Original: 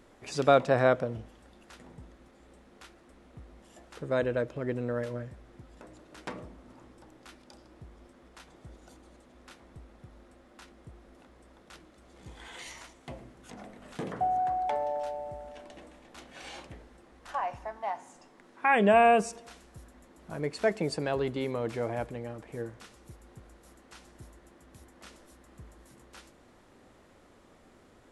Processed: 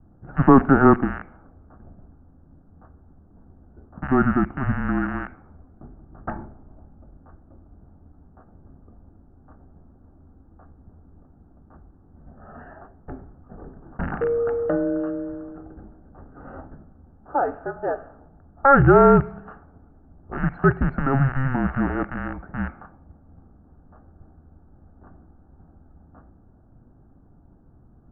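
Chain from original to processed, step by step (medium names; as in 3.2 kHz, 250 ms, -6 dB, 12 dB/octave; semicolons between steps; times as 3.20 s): rattle on loud lows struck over -39 dBFS, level -22 dBFS; bass shelf 140 Hz -11 dB; level-controlled noise filter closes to 440 Hz, open at -30 dBFS; reverberation RT60 0.45 s, pre-delay 3 ms, DRR 22 dB; mistuned SSB -270 Hz 260–2100 Hz; trim +2.5 dB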